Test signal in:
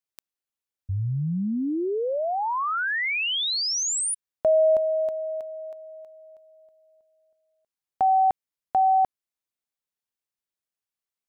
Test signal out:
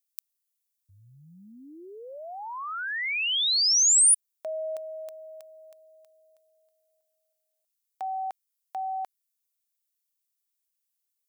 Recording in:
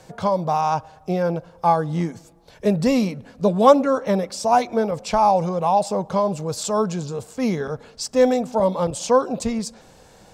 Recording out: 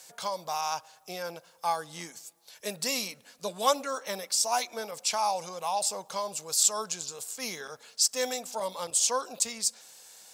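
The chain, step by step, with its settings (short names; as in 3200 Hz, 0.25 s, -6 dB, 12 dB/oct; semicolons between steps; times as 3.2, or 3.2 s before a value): differentiator; gain +7 dB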